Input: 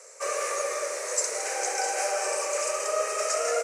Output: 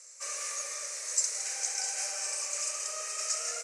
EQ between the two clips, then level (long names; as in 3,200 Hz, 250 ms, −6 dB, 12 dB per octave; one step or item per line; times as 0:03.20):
resonant band-pass 6,000 Hz, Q 0.88
0.0 dB